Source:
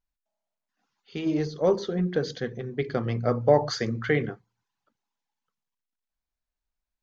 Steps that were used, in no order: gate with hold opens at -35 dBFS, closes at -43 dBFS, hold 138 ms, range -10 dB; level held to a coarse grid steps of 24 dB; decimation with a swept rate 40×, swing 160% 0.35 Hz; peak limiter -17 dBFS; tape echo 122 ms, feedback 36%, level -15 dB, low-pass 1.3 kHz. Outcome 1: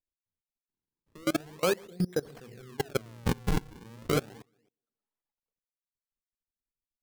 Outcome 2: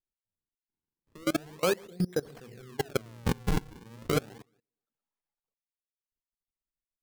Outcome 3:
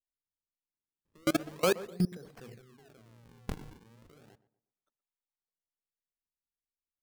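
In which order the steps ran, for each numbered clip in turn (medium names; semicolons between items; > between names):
gate with hold > tape echo > decimation with a swept rate > level held to a coarse grid > peak limiter; tape echo > gate with hold > level held to a coarse grid > decimation with a swept rate > peak limiter; peak limiter > decimation with a swept rate > level held to a coarse grid > tape echo > gate with hold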